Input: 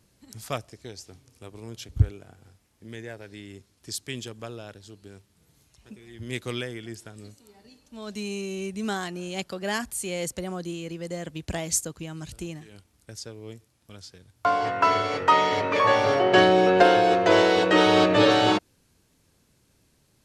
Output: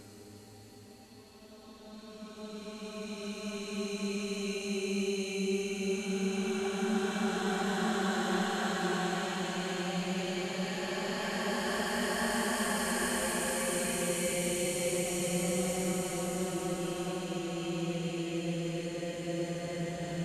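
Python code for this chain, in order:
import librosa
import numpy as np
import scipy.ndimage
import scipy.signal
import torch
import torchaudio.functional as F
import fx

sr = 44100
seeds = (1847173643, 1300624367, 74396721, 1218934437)

y = fx.transient(x, sr, attack_db=-9, sustain_db=3)
y = fx.paulstretch(y, sr, seeds[0], factor=5.3, window_s=1.0, from_s=7.41)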